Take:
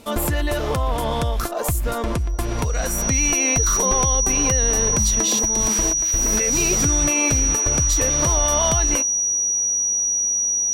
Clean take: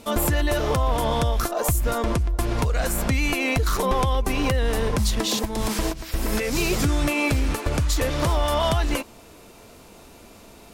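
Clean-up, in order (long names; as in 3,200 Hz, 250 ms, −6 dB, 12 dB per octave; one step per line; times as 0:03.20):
notch filter 5,800 Hz, Q 30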